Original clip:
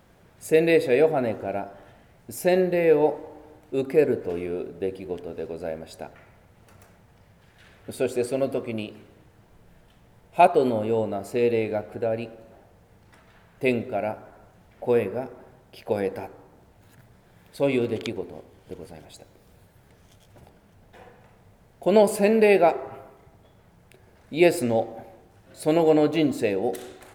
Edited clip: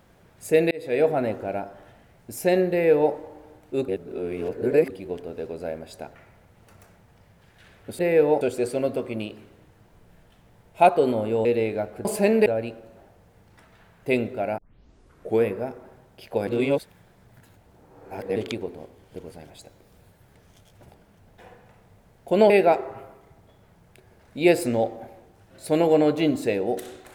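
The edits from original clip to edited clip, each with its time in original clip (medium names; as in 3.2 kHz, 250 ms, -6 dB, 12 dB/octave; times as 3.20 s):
0.71–1.08 s: fade in
2.71–3.13 s: copy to 7.99 s
3.88–4.90 s: reverse
11.03–11.41 s: delete
14.13 s: tape start 0.85 s
16.02–17.91 s: reverse
22.05–22.46 s: move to 12.01 s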